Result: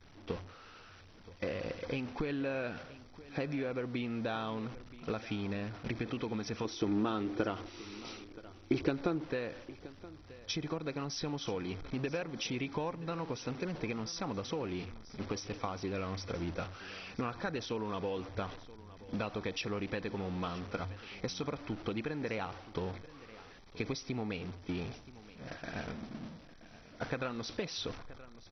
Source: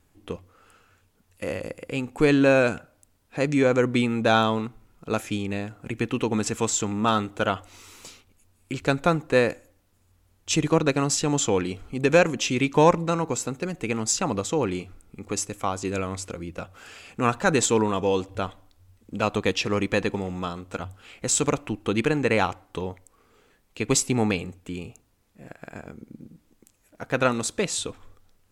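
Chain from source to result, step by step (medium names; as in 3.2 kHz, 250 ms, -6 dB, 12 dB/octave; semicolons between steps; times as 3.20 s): jump at every zero crossing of -32 dBFS; resampled via 16 kHz; expander -28 dBFS; compression 10:1, threshold -34 dBFS, peak gain reduction 22.5 dB; 6.65–9.24 s: peaking EQ 340 Hz +13 dB 0.62 oct; delay 976 ms -17.5 dB; MP2 32 kbps 24 kHz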